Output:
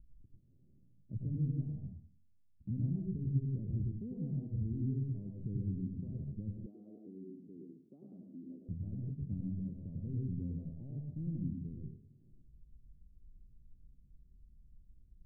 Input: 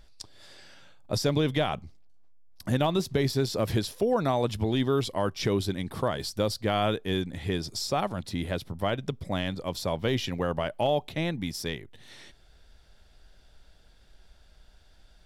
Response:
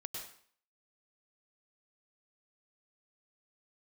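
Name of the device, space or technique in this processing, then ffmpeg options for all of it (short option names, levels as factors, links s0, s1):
club heard from the street: -filter_complex "[0:a]alimiter=limit=0.0708:level=0:latency=1:release=32,lowpass=f=240:w=0.5412,lowpass=f=240:w=1.3066[s0];[1:a]atrim=start_sample=2205[s1];[s0][s1]afir=irnorm=-1:irlink=0,asettb=1/sr,asplit=3[s2][s3][s4];[s2]atrim=end=6.664[s5];[s3]atrim=start=6.66:end=8.69,asetpts=PTS-STARTPTS,afade=t=in:d=0.004:c=qsin,afade=t=out:st=2.026:d=0.004:c=qsin,highpass=f=270:w=0.5412,highpass=f=270:w=1.3066[s6];[s4]atrim=start=8.686[s7];[s5][s6]acrossfade=d=0.004:c1=hsin:c2=qsin[s8];[s8][s7]acrossfade=d=0.004:c1=qsin:c2=hsin"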